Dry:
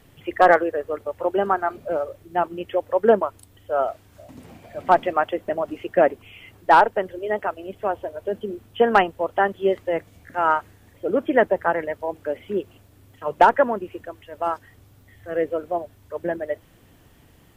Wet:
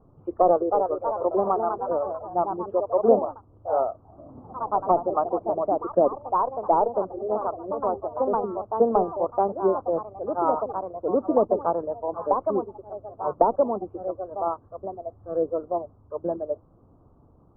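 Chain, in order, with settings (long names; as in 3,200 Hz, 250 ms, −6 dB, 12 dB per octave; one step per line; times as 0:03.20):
delay with pitch and tempo change per echo 361 ms, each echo +2 semitones, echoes 3, each echo −6 dB
elliptic low-pass filter 1,200 Hz, stop band 40 dB
treble cut that deepens with the level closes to 710 Hz, closed at −14 dBFS
level −1.5 dB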